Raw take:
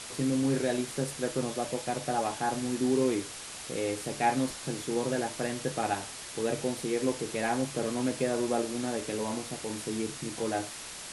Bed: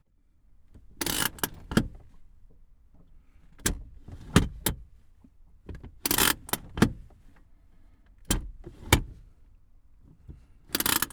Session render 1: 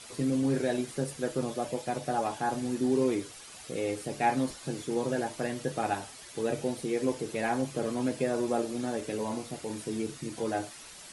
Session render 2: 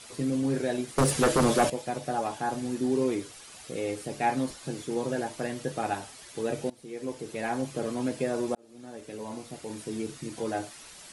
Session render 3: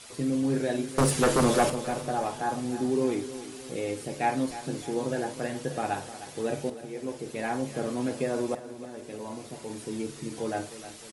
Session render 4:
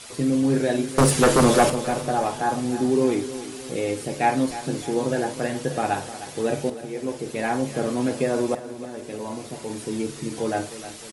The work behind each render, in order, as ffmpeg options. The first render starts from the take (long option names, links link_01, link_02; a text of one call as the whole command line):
ffmpeg -i in.wav -af "afftdn=noise_reduction=9:noise_floor=-43" out.wav
ffmpeg -i in.wav -filter_complex "[0:a]asettb=1/sr,asplit=3[link_01][link_02][link_03];[link_01]atrim=end=0.984[link_04];[link_02]atrim=start=0.98:end=1.7,asetpts=PTS-STARTPTS,afade=type=in:duration=0.004:curve=qsin,afade=type=out:start_time=0.716:duration=0.004:curve=qsin,aeval=exprs='0.15*sin(PI/2*3.16*val(0)/0.15)':channel_layout=same[link_05];[link_03]atrim=start=1.696[link_06];[link_04][link_05]acrossfade=duration=0.004:curve1=hsin:curve2=qsin[link_07];[link_07][link_06]acrossfade=duration=0.004:curve1=qsin:curve2=hsin,asplit=3[link_08][link_09][link_10];[link_08]atrim=end=6.7,asetpts=PTS-STARTPTS,afade=type=out:start_time=6.696:duration=0.004:curve=hsin:silence=0.0944061[link_11];[link_09]atrim=start=6.7:end=8.55,asetpts=PTS-STARTPTS,afade=type=in:duration=1.21:curve=qsin:silence=0.0944061,afade=type=out:start_time=1.846:duration=0.004:curve=hsin[link_12];[link_10]atrim=start=8.55,asetpts=PTS-STARTPTS,afade=type=in:duration=1.87:curve=qsin[link_13];[link_11][link_12][link_13]concat=n=3:v=0:a=1" out.wav
ffmpeg -i in.wav -filter_complex "[0:a]asplit=2[link_01][link_02];[link_02]adelay=49,volume=-14dB[link_03];[link_01][link_03]amix=inputs=2:normalize=0,aecho=1:1:308|616|924|1232|1540:0.211|0.108|0.055|0.028|0.0143" out.wav
ffmpeg -i in.wav -af "volume=6dB" out.wav